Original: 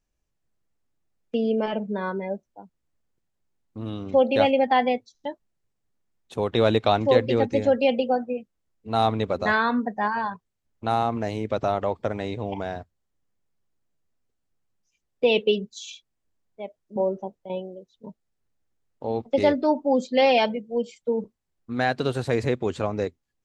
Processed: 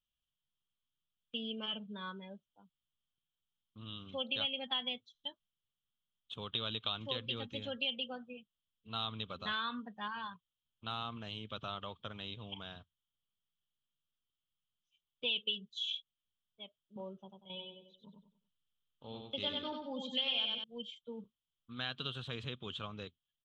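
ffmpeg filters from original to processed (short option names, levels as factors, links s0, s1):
-filter_complex "[0:a]asettb=1/sr,asplit=3[s0][s1][s2];[s0]atrim=end=17.204[s3];[s1]atrim=start=17.2:end=20.64,asetpts=PTS-STARTPTS,afade=t=in:d=0.004:c=qsin,afade=t=out:st=3.436:d=0.004:c=qsin,aecho=1:1:94|188|282|376:0.631|0.215|0.0729|0.0248,atrim=end_sample=151704[s4];[s2]atrim=start=20.636[s5];[s3][s4]acrossfade=d=0.004:c1=hsin:c2=qsin[s6];[s6][s5]acrossfade=d=0.004:c1=qsin:c2=hsin,firequalizer=gain_entry='entry(160,0);entry(310,-13);entry(770,-17);entry(1200,-1);entry(2000,-13);entry(3200,15);entry(4600,-11);entry(9300,-16)':delay=0.05:min_phase=1,acompressor=threshold=0.0562:ratio=6,lowshelf=f=200:g=-11.5,volume=0.473"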